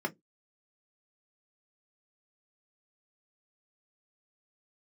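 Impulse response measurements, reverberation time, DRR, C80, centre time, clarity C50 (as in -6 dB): 0.15 s, 0.5 dB, 38.0 dB, 7 ms, 27.0 dB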